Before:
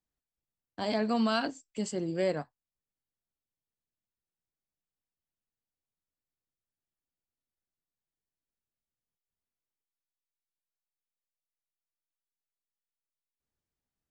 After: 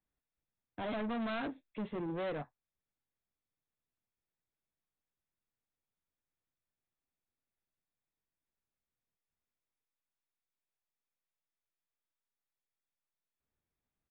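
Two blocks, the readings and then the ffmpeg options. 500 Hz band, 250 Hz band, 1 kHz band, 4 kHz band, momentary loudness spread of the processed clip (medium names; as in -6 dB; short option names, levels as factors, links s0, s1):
-8.0 dB, -7.0 dB, -7.0 dB, -11.5 dB, 8 LU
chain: -af "bandreject=f=3000:w=5.2,aresample=8000,asoftclip=type=tanh:threshold=0.0168,aresample=44100,volume=1.12"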